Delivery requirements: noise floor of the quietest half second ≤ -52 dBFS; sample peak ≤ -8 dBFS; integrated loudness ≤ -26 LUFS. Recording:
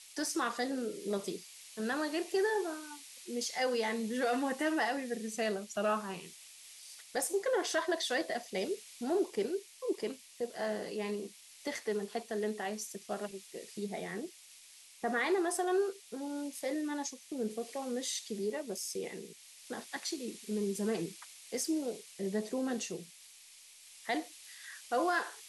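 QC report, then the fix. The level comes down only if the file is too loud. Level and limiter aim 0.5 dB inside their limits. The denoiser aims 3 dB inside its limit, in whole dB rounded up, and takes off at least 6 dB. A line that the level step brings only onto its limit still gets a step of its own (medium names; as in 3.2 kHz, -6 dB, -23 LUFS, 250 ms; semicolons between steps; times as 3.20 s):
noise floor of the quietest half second -57 dBFS: pass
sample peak -21.0 dBFS: pass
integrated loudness -36.0 LUFS: pass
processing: none needed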